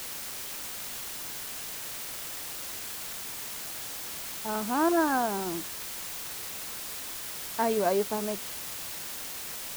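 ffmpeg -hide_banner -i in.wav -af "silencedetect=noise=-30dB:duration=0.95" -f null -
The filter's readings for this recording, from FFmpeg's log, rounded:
silence_start: 0.00
silence_end: 4.45 | silence_duration: 4.45
silence_start: 5.61
silence_end: 7.59 | silence_duration: 1.98
silence_start: 8.35
silence_end: 9.76 | silence_duration: 1.41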